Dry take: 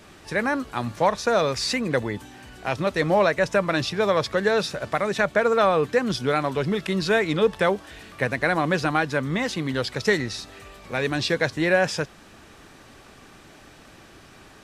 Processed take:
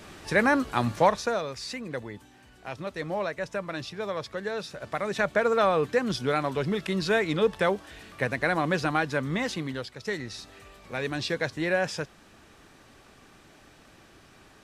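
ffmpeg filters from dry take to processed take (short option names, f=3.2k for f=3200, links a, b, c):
-af "volume=18dB,afade=t=out:st=0.9:d=0.52:silence=0.223872,afade=t=in:st=4.66:d=0.62:silence=0.421697,afade=t=out:st=9.52:d=0.42:silence=0.281838,afade=t=in:st=9.94:d=0.52:silence=0.375837"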